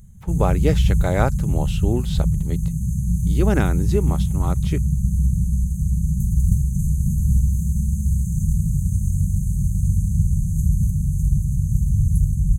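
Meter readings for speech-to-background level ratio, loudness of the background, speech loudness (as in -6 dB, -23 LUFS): -4.0 dB, -21.5 LUFS, -25.5 LUFS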